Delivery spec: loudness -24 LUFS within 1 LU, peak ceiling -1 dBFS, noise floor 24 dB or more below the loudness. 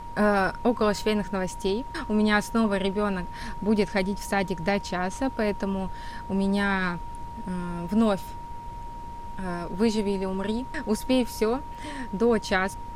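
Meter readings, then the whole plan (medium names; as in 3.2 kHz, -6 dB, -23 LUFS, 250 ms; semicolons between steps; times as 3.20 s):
steady tone 940 Hz; tone level -38 dBFS; noise floor -38 dBFS; noise floor target -51 dBFS; loudness -26.5 LUFS; peak level -10.0 dBFS; loudness target -24.0 LUFS
-> band-stop 940 Hz, Q 30; noise print and reduce 13 dB; trim +2.5 dB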